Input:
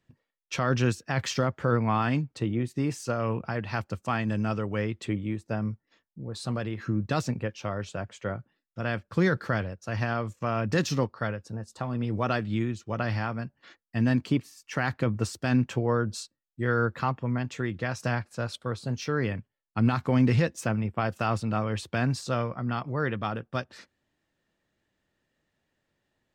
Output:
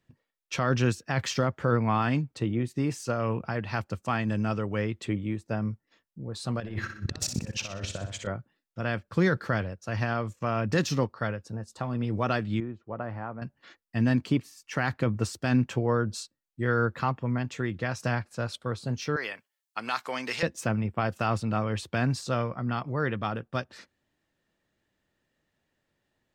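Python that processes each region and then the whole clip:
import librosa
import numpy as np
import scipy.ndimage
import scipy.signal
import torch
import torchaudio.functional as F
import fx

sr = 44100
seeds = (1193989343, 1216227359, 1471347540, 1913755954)

y = fx.chain(x, sr, fx.over_compress(threshold_db=-39.0, ratio=-1.0),
    fx.transient(attack_db=9, sustain_db=-9),
    fx.room_flutter(wall_m=10.6, rt60_s=0.51), at=(6.6, 8.27))
y = fx.chain(y, sr, fx.lowpass(hz=1000.0, slope=12),
    fx.low_shelf(hz=300.0, db=-10.0), at=(12.6, 13.42))
y = fx.chain(y, sr, fx.highpass(hz=670.0, slope=12),
    fx.high_shelf(hz=3000.0, db=9.5), at=(19.16, 20.43))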